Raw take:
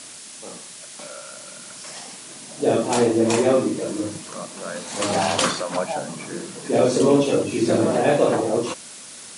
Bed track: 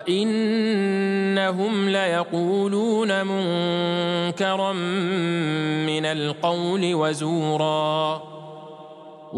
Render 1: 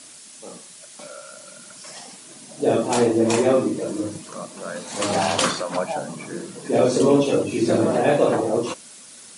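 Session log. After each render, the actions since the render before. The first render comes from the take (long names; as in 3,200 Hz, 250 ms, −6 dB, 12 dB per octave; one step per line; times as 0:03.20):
broadband denoise 6 dB, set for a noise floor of −40 dBFS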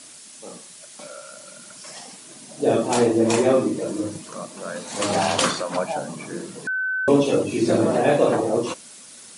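0:06.67–0:07.08: beep over 1,520 Hz −21.5 dBFS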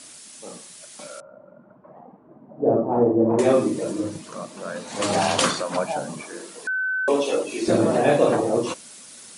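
0:01.20–0:03.39: low-pass filter 1,000 Hz 24 dB per octave
0:03.92–0:05.02: high-shelf EQ 8,600 Hz → 5,700 Hz −8 dB
0:06.21–0:07.68: high-pass filter 440 Hz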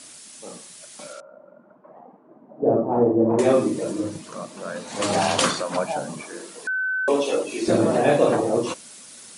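0:01.13–0:02.63: band-pass filter 230–7,100 Hz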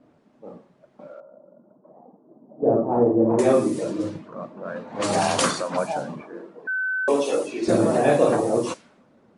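low-pass that shuts in the quiet parts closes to 500 Hz, open at −19 dBFS
dynamic equaliser 3,200 Hz, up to −4 dB, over −42 dBFS, Q 1.4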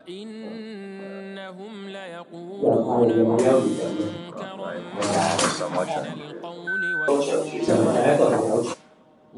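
mix in bed track −15 dB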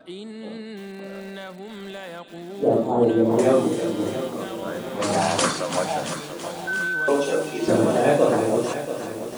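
delay with a high-pass on its return 335 ms, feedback 60%, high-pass 1,700 Hz, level −9 dB
feedback echo at a low word length 684 ms, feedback 55%, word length 6 bits, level −10.5 dB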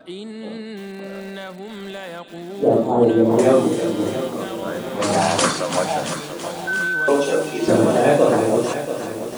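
level +3.5 dB
brickwall limiter −3 dBFS, peak gain reduction 1 dB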